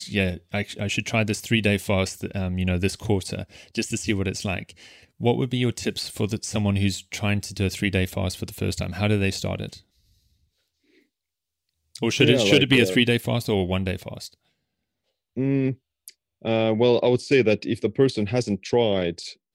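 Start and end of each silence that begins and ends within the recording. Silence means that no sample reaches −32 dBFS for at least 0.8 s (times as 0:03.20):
0:09.74–0:11.95
0:14.27–0:15.37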